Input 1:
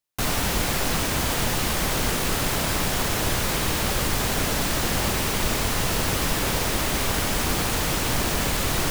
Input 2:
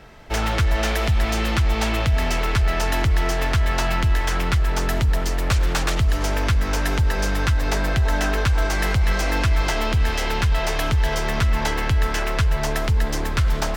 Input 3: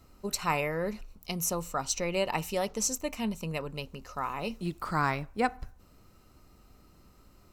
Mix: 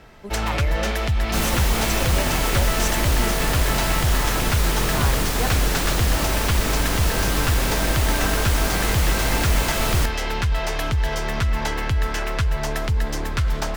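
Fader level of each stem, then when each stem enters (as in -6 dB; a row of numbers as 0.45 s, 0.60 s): -0.5 dB, -2.0 dB, -1.5 dB; 1.15 s, 0.00 s, 0.00 s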